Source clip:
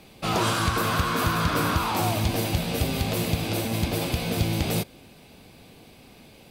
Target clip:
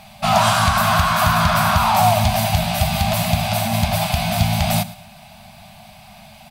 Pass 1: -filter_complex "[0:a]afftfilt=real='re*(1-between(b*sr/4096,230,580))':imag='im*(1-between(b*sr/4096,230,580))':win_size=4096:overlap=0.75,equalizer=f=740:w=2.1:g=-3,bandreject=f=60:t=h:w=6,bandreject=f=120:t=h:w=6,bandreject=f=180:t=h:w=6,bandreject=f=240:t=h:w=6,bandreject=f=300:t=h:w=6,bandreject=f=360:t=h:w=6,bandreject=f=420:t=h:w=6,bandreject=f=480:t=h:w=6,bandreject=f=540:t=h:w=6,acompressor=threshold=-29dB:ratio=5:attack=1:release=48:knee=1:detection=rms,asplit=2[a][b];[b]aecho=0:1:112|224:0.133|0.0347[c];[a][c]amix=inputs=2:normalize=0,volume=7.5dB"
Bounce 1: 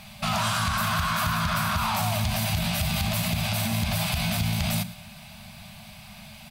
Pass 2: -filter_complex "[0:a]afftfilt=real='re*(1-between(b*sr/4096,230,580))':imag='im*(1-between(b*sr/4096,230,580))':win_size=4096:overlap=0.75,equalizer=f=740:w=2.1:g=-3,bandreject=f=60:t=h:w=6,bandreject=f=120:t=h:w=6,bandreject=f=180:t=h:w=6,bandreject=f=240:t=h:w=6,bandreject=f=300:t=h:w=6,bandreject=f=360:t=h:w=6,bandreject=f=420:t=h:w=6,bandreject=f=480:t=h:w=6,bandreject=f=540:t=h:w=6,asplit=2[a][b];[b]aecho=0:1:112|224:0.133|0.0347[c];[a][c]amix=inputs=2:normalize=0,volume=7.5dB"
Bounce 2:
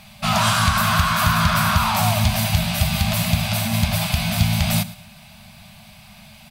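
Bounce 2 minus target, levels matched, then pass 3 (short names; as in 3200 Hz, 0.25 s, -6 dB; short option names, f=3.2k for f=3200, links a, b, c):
1000 Hz band -3.5 dB
-filter_complex "[0:a]afftfilt=real='re*(1-between(b*sr/4096,230,580))':imag='im*(1-between(b*sr/4096,230,580))':win_size=4096:overlap=0.75,equalizer=f=740:w=2.1:g=7,bandreject=f=60:t=h:w=6,bandreject=f=120:t=h:w=6,bandreject=f=180:t=h:w=6,bandreject=f=240:t=h:w=6,bandreject=f=300:t=h:w=6,bandreject=f=360:t=h:w=6,bandreject=f=420:t=h:w=6,bandreject=f=480:t=h:w=6,bandreject=f=540:t=h:w=6,asplit=2[a][b];[b]aecho=0:1:112|224:0.133|0.0347[c];[a][c]amix=inputs=2:normalize=0,volume=7.5dB"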